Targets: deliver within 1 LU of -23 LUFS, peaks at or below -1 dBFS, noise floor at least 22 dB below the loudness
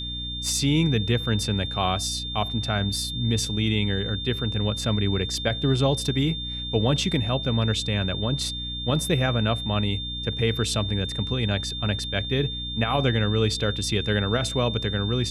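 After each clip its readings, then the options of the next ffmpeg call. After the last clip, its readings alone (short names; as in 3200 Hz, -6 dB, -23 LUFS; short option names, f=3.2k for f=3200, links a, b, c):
hum 60 Hz; harmonics up to 300 Hz; hum level -34 dBFS; steady tone 3600 Hz; tone level -31 dBFS; loudness -24.5 LUFS; peak -8.5 dBFS; loudness target -23.0 LUFS
-> -af "bandreject=f=60:t=h:w=6,bandreject=f=120:t=h:w=6,bandreject=f=180:t=h:w=6,bandreject=f=240:t=h:w=6,bandreject=f=300:t=h:w=6"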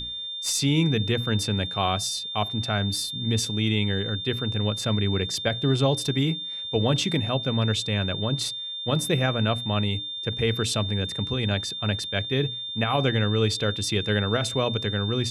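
hum none; steady tone 3600 Hz; tone level -31 dBFS
-> -af "bandreject=f=3.6k:w=30"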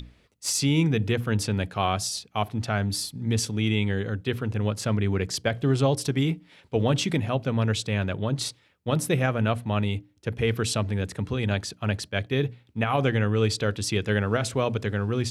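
steady tone none; loudness -26.5 LUFS; peak -9.5 dBFS; loudness target -23.0 LUFS
-> -af "volume=3.5dB"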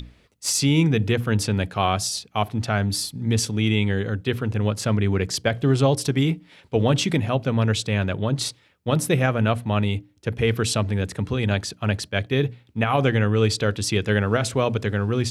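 loudness -23.0 LUFS; peak -6.0 dBFS; noise floor -58 dBFS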